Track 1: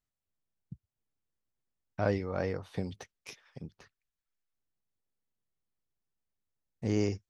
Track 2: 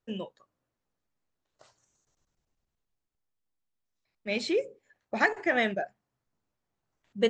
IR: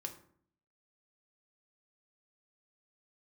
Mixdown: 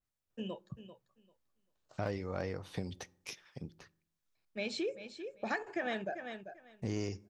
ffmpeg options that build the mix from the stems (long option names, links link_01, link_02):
-filter_complex "[0:a]aeval=exprs='clip(val(0),-1,0.0562)':channel_layout=same,adynamicequalizer=threshold=0.00224:dfrequency=2200:dqfactor=0.7:tfrequency=2200:tqfactor=0.7:attack=5:release=100:ratio=0.375:range=2:mode=boostabove:tftype=highshelf,volume=-1.5dB,asplit=2[link_01][link_02];[link_02]volume=-12dB[link_03];[1:a]bandreject=frequency=2000:width=8,adelay=300,volume=-4.5dB,asplit=3[link_04][link_05][link_06];[link_05]volume=-17.5dB[link_07];[link_06]volume=-12.5dB[link_08];[2:a]atrim=start_sample=2205[link_09];[link_03][link_07]amix=inputs=2:normalize=0[link_10];[link_10][link_09]afir=irnorm=-1:irlink=0[link_11];[link_08]aecho=0:1:392|784|1176:1|0.16|0.0256[link_12];[link_01][link_04][link_11][link_12]amix=inputs=4:normalize=0,acompressor=threshold=-35dB:ratio=2.5"